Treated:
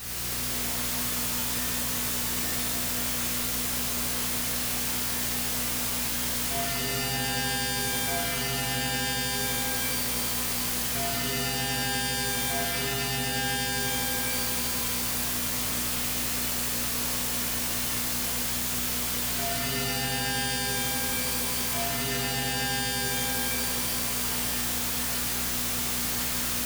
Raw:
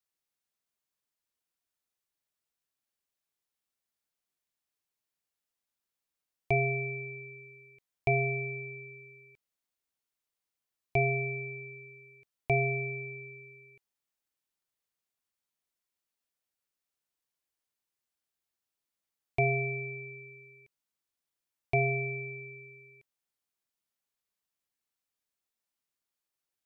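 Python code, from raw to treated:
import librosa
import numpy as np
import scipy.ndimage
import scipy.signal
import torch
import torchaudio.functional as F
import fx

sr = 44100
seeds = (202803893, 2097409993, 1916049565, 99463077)

y = np.sign(x) * np.sqrt(np.mean(np.square(x)))
y = fx.dmg_buzz(y, sr, base_hz=60.0, harmonics=4, level_db=-52.0, tilt_db=-2, odd_only=False)
y = fx.rev_shimmer(y, sr, seeds[0], rt60_s=3.0, semitones=12, shimmer_db=-2, drr_db=-9.0)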